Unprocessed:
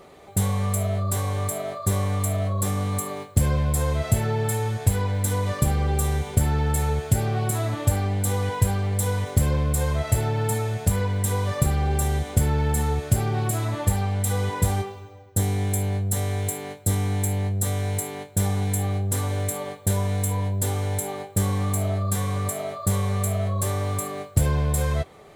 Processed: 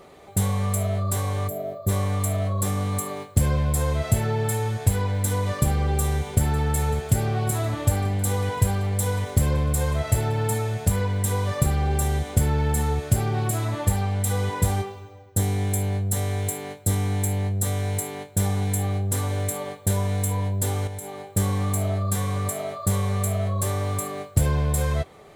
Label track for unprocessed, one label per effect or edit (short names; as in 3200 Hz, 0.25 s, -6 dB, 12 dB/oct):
1.480000	1.890000	spectral gain 750–12000 Hz -13 dB
5.820000	6.460000	echo throw 0.55 s, feedback 70%, level -17 dB
6.980000	10.550000	echo 0.932 s -23.5 dB
20.870000	21.340000	compressor 2.5:1, threshold -34 dBFS